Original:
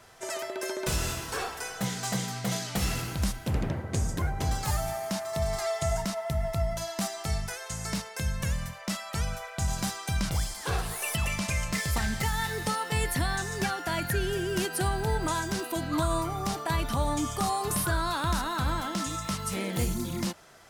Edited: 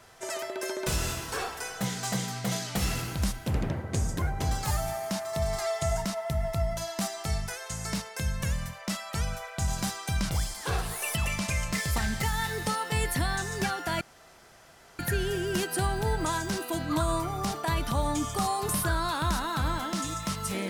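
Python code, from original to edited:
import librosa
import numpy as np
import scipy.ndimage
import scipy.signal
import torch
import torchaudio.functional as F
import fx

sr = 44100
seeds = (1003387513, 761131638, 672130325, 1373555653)

y = fx.edit(x, sr, fx.insert_room_tone(at_s=14.01, length_s=0.98), tone=tone)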